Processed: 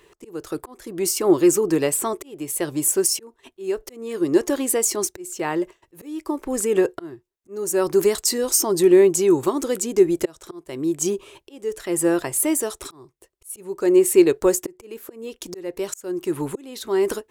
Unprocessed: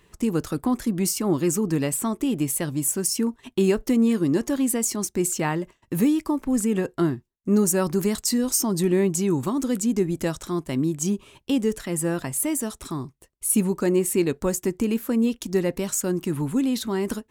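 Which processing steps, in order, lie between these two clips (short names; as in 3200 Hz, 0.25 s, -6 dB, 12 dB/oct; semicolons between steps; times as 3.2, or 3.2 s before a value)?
auto swell 0.525 s; resonant low shelf 290 Hz -7 dB, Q 3; gain +4 dB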